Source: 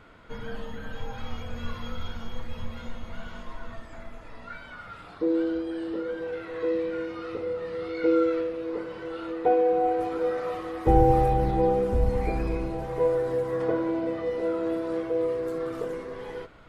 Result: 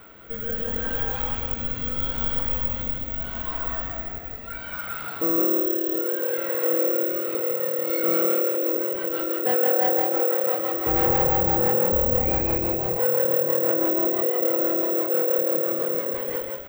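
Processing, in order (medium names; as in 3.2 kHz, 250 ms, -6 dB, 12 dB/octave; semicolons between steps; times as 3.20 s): bass shelf 220 Hz -7.5 dB; in parallel at +0.5 dB: compression, threshold -35 dBFS, peak gain reduction 16.5 dB; on the sum: rotary cabinet horn 0.75 Hz, later 6 Hz, at 7.38 s; overload inside the chain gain 24.5 dB; on a send: frequency-shifting echo 165 ms, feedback 34%, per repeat +37 Hz, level -3.5 dB; on the sum: careless resampling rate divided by 2×, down filtered, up zero stuff; trim +2 dB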